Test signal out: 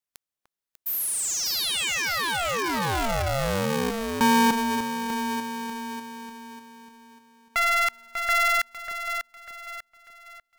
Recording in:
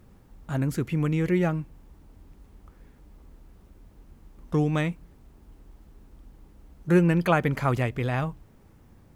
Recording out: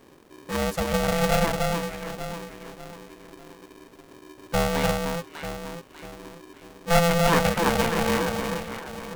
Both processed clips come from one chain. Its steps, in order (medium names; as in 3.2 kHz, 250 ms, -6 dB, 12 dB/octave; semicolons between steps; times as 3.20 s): echo whose repeats swap between lows and highs 297 ms, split 820 Hz, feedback 62%, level -2.5 dB; polarity switched at an audio rate 340 Hz